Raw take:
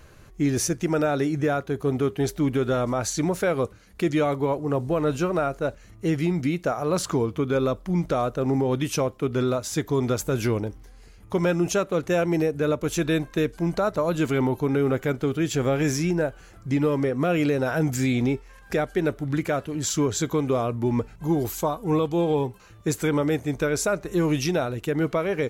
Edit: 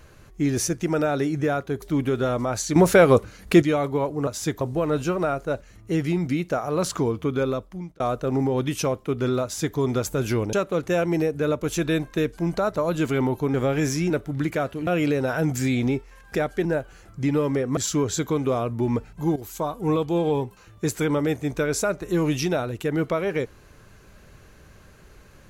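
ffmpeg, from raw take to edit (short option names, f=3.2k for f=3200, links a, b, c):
-filter_complex "[0:a]asplit=14[a][b][c][d][e][f][g][h][i][j][k][l][m][n];[a]atrim=end=1.822[o];[b]atrim=start=2.298:end=3.242[p];[c]atrim=start=3.238:end=4.102,asetpts=PTS-STARTPTS,volume=9dB[q];[d]atrim=start=4.098:end=4.752[r];[e]atrim=start=9.568:end=9.912[s];[f]atrim=start=4.748:end=8.14,asetpts=PTS-STARTPTS,afade=t=out:st=2.762:d=0.63[t];[g]atrim=start=8.14:end=10.672,asetpts=PTS-STARTPTS,afade=t=in:d=0.004:c=hsin[u];[h]atrim=start=11.728:end=14.742[v];[i]atrim=start=15.568:end=16.132[w];[j]atrim=start=19.028:end=19.802[x];[k]atrim=start=17.248:end=19.032[y];[l]atrim=start=16.128:end=17.252[z];[m]atrim=start=19.798:end=21.39,asetpts=PTS-STARTPTS,afade=t=out:st=1.588:d=0.004:c=hsin:silence=0.199526[aa];[n]atrim=start=21.39,asetpts=PTS-STARTPTS,afade=t=in:d=0.38:silence=0.199526[ab];[o][p]acrossfade=d=0.004:c1=hsin:c2=hsin[ac];[ac][q]acrossfade=d=0.004:c1=hsin:c2=hsin[ad];[ad][r]acrossfade=d=0.004:c1=hsin:c2=hsin[ae];[ae][s]acrossfade=d=0.004:c1=hsin:c2=hsin[af];[t][u]concat=n=2:v=0:a=1[ag];[af][ag]acrossfade=d=0.004:c1=hsin:c2=hsin[ah];[ah][v]acrossfade=d=0.004:c1=hsin:c2=hsin[ai];[ai][w]acrossfade=d=0.004:c1=hsin:c2=hsin[aj];[aj][x]acrossfade=d=0.004:c1=hsin:c2=hsin[ak];[ak][y]acrossfade=d=0.004:c1=hsin:c2=hsin[al];[al][z]acrossfade=d=0.004:c1=hsin:c2=hsin[am];[aa][ab]concat=n=2:v=0:a=1[an];[am][an]acrossfade=d=0.004:c1=hsin:c2=hsin"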